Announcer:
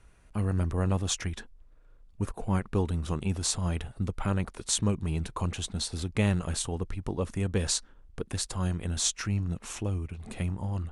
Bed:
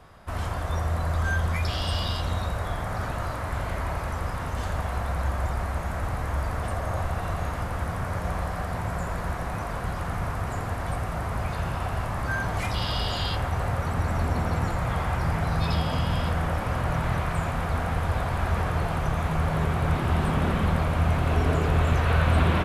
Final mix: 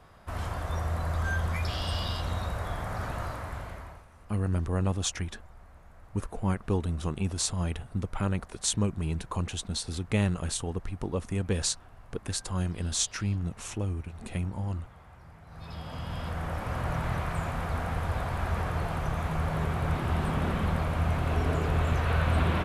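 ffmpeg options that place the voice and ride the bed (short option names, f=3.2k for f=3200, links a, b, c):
-filter_complex "[0:a]adelay=3950,volume=-0.5dB[a];[1:a]volume=17dB,afade=t=out:st=3.21:d=0.84:silence=0.0841395,afade=t=in:st=15.46:d=1.4:silence=0.0891251[b];[a][b]amix=inputs=2:normalize=0"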